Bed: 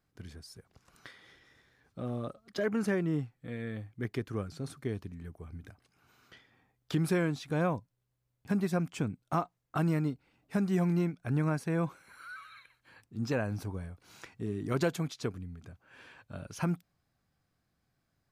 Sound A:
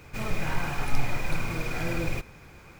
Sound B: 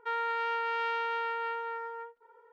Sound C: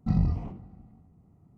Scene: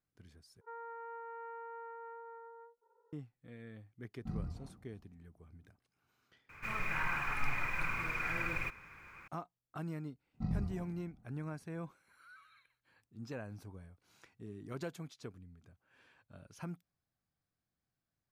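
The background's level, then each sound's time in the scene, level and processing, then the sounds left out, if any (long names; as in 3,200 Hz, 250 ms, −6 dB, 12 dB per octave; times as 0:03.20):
bed −12.5 dB
0:00.61: overwrite with B −10 dB + Gaussian smoothing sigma 6.7 samples
0:04.19: mix in C −15.5 dB
0:06.49: overwrite with A −13 dB + flat-topped bell 1,600 Hz +13 dB
0:10.34: mix in C −11.5 dB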